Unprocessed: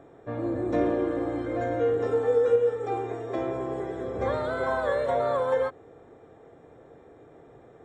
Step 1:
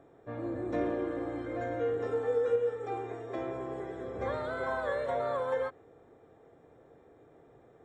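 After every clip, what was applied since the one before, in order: dynamic bell 1.9 kHz, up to +3 dB, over -44 dBFS, Q 0.93; trim -7 dB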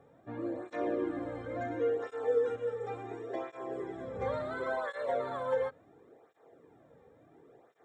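cancelling through-zero flanger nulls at 0.71 Hz, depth 3.2 ms; trim +1.5 dB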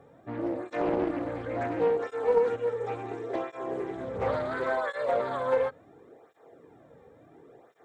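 loudspeaker Doppler distortion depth 0.4 ms; trim +5.5 dB

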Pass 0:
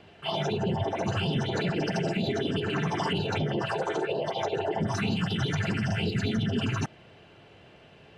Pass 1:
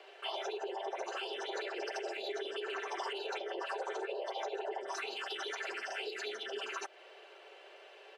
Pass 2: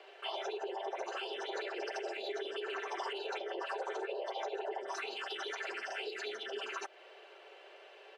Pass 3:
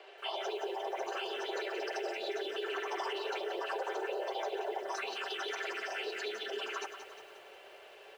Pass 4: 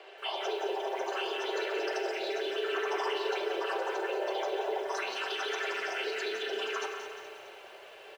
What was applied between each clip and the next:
steep high-pass 390 Hz 48 dB/octave; comb 5.2 ms, depth 38%; compression 2.5:1, threshold -40 dBFS, peak gain reduction 10 dB
treble shelf 6.8 kHz -6 dB
bit-crushed delay 178 ms, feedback 55%, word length 10-bit, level -9 dB; trim +1.5 dB
feedback delay 212 ms, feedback 53%, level -11 dB; on a send at -5 dB: reverberation RT60 0.80 s, pre-delay 7 ms; on the sum: trim +2.5 dB

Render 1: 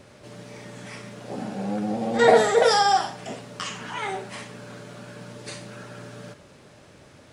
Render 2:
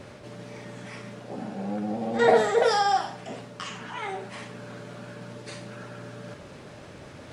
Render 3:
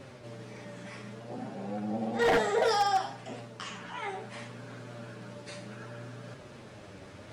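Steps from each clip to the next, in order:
treble shelf 4.8 kHz -7 dB; reverse; upward compressor, threshold -31 dBFS; reverse; trim -3 dB
flange 0.64 Hz, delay 7.3 ms, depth 3.3 ms, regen +37%; wavefolder -18.5 dBFS

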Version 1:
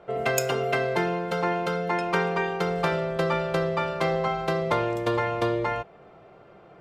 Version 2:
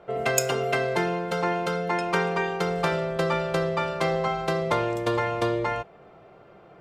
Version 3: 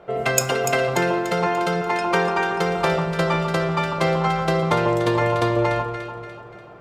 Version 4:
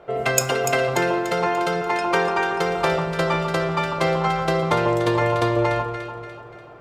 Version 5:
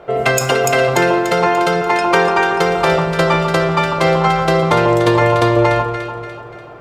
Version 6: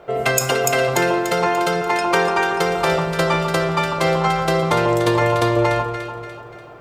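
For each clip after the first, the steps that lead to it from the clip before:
dynamic bell 8 kHz, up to +5 dB, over -49 dBFS, Q 0.82
echo whose repeats swap between lows and highs 146 ms, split 1.3 kHz, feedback 67%, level -5 dB; trim +4 dB
peaking EQ 190 Hz -10.5 dB 0.21 oct
loudness maximiser +8.5 dB; trim -1 dB
treble shelf 6.9 kHz +9 dB; trim -4.5 dB

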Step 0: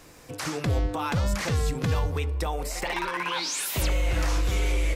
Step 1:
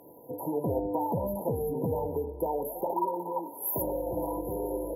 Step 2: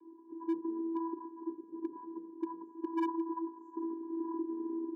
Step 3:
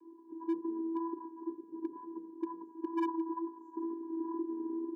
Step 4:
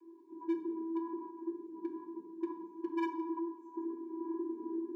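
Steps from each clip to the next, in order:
frequency weighting A; FFT band-reject 1–11 kHz; peaking EQ 770 Hz -9 dB 0.53 oct; trim +8.5 dB
in parallel at -1 dB: compression 6:1, threshold -39 dBFS, peak gain reduction 14 dB; on the sum: vocoder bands 16, square 330 Hz; hard clipper -20 dBFS, distortion -22 dB; trim -7.5 dB
vibrato 2.1 Hz 13 cents
reverberation RT60 0.65 s, pre-delay 3 ms, DRR 1 dB; trim -3 dB

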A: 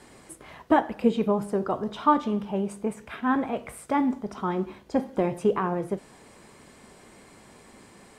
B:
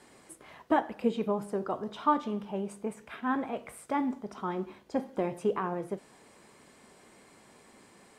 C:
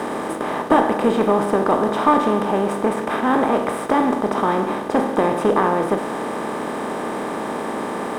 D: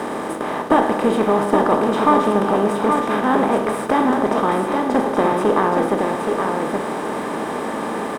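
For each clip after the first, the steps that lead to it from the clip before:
bass shelf 110 Hz -10 dB; trim -5 dB
spectral levelling over time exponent 0.4; hysteresis with a dead band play -49 dBFS; Chebyshev shaper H 2 -18 dB, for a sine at -10 dBFS; trim +7.5 dB
delay 822 ms -4.5 dB

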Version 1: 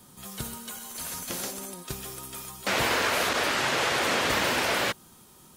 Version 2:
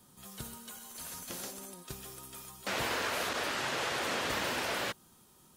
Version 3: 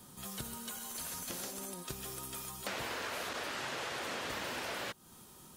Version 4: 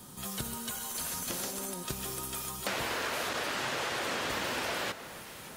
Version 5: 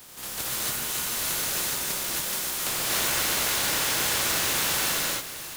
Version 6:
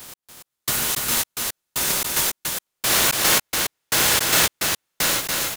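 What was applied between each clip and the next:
peaking EQ 2.2 kHz -2 dB 0.21 oct; trim -8 dB
compression 4:1, threshold -45 dBFS, peak gain reduction 12.5 dB; trim +6 dB
crackle 24 per s -53 dBFS; echo whose repeats swap between lows and highs 288 ms, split 1.9 kHz, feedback 80%, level -13.5 dB; trim +5.5 dB
spectral contrast reduction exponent 0.22; gated-style reverb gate 310 ms rising, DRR -5.5 dB; trim +2 dB
trance gate "x....xx." 111 bpm -60 dB; delay 286 ms -3.5 dB; trim +7.5 dB

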